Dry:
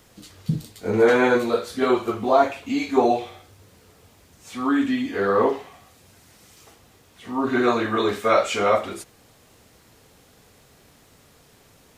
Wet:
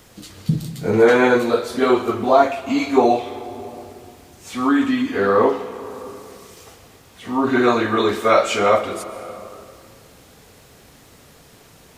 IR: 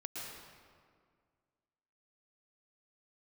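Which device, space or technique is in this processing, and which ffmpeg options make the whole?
compressed reverb return: -filter_complex "[0:a]asplit=2[s0][s1];[1:a]atrim=start_sample=2205[s2];[s1][s2]afir=irnorm=-1:irlink=0,acompressor=threshold=0.0398:ratio=6,volume=0.794[s3];[s0][s3]amix=inputs=2:normalize=0,volume=1.33"

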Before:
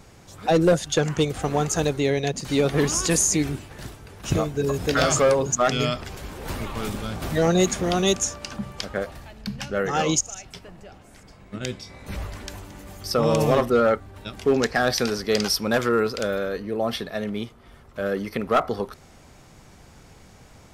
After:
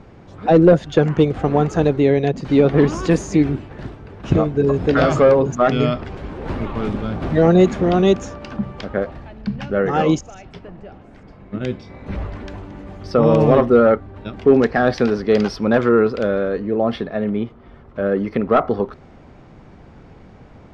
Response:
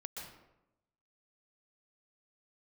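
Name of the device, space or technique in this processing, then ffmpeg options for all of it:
phone in a pocket: -filter_complex "[0:a]asettb=1/sr,asplit=3[s0][s1][s2];[s0]atrim=end=17.054[s3];[s1]atrim=start=17.05:end=18.22,asetpts=PTS-STARTPTS,afade=t=in:d=0.004:c=qsin,afade=t=out:st=1.166:d=0.004:c=qsin,acrossover=split=3400[s4][s5];[s5]acompressor=threshold=0.00251:ratio=4:attack=1:release=60[s6];[s4][s6]amix=inputs=2:normalize=0[s7];[s2]atrim=start=18.216[s8];[s3][s7]acrossfade=d=0.004:c1=hsin:c2=qsin[s9];[s9][s8]acrossfade=d=0.004:c1=qsin:c2=hsin,lowpass=3700,equalizer=f=280:t=o:w=1.7:g=4,highshelf=f=2400:g=-10,volume=1.78"

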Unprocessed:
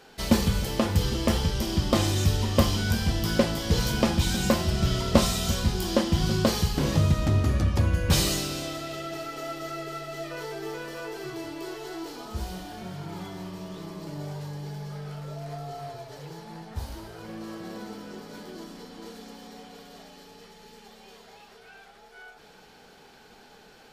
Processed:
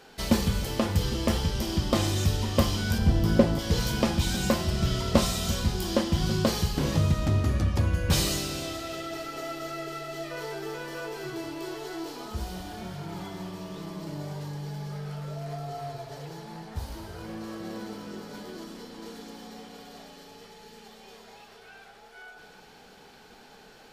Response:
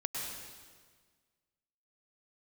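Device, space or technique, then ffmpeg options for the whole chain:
ducked reverb: -filter_complex "[0:a]asplit=3[s0][s1][s2];[1:a]atrim=start_sample=2205[s3];[s1][s3]afir=irnorm=-1:irlink=0[s4];[s2]apad=whole_len=1054961[s5];[s4][s5]sidechaincompress=threshold=0.0282:ratio=8:attack=16:release=691,volume=0.422[s6];[s0][s6]amix=inputs=2:normalize=0,asettb=1/sr,asplit=3[s7][s8][s9];[s7]atrim=end=2.984[s10];[s8]atrim=start=2.98:end=3.59,asetpts=PTS-STARTPTS,afade=t=in:d=0.004:c=qsin,afade=t=out:st=0.606:d=0.004:c=qsin,tiltshelf=f=1100:g=6[s11];[s9]atrim=start=3.586[s12];[s10][s11]acrossfade=d=0.004:c1=hsin:c2=qsin[s13];[s13][s12]acrossfade=d=0.004:c1=qsin:c2=hsin,volume=0.75"

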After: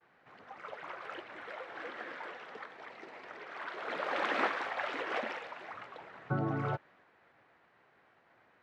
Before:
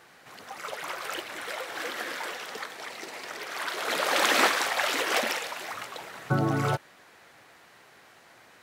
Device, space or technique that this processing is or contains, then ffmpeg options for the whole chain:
hearing-loss simulation: -af "lowpass=2100,agate=range=0.0224:threshold=0.00224:ratio=3:detection=peak,volume=0.422"

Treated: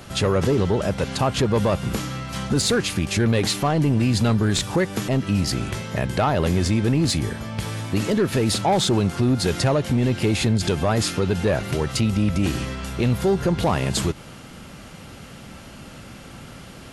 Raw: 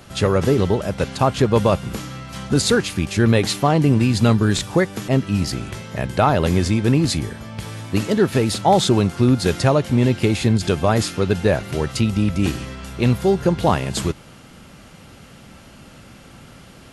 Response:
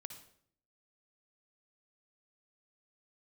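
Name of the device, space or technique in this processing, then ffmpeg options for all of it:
soft clipper into limiter: -filter_complex "[0:a]asettb=1/sr,asplit=3[s0][s1][s2];[s0]atrim=end=0.454[s3];[s1]atrim=start=0.45:end=0.91,asetpts=PTS-STARTPTS,afade=t=in:d=0.004:c=qsin,afade=t=out:st=0.456:d=0.004:c=qsin,lowpass=10000[s4];[s2]atrim=start=0.906[s5];[s3][s4]acrossfade=d=0.004:c1=hsin:c2=qsin[s6];[s6][s5]acrossfade=d=0.004:c1=qsin:c2=hsin,asoftclip=type=tanh:threshold=0.316,alimiter=limit=0.158:level=0:latency=1:release=94,volume=1.41"

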